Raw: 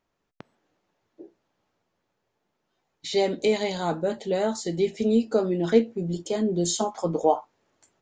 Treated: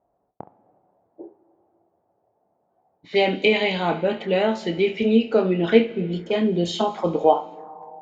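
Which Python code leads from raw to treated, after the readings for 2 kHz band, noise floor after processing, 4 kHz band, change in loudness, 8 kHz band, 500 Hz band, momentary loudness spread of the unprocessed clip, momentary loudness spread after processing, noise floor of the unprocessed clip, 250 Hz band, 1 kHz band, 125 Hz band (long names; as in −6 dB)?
+11.0 dB, −71 dBFS, +6.0 dB, +4.0 dB, below −10 dB, +4.0 dB, 6 LU, 7 LU, −78 dBFS, +3.5 dB, +5.0 dB, +3.0 dB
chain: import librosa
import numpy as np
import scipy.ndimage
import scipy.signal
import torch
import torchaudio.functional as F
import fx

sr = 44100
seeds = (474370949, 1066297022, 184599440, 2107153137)

y = scipy.signal.sosfilt(scipy.signal.butter(2, 41.0, 'highpass', fs=sr, output='sos'), x)
y = fx.room_early_taps(y, sr, ms=(27, 68), db=(-9.5, -15.0))
y = fx.rev_plate(y, sr, seeds[0], rt60_s=2.2, hf_ratio=0.95, predelay_ms=0, drr_db=16.0)
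y = fx.envelope_lowpass(y, sr, base_hz=720.0, top_hz=2700.0, q=4.0, full_db=-25.0, direction='up')
y = F.gain(torch.from_numpy(y), 3.0).numpy()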